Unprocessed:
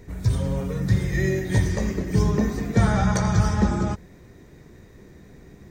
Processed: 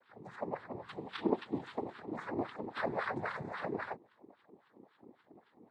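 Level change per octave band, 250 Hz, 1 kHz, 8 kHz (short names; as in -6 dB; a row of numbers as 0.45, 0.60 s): -16.5 dB, -9.5 dB, under -35 dB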